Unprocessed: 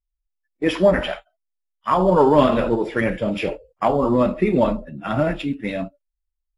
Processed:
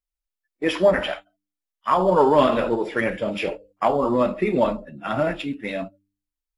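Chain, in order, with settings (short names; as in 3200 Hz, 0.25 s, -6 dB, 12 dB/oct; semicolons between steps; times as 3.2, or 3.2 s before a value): low shelf 220 Hz -9.5 dB; de-hum 99.02 Hz, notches 3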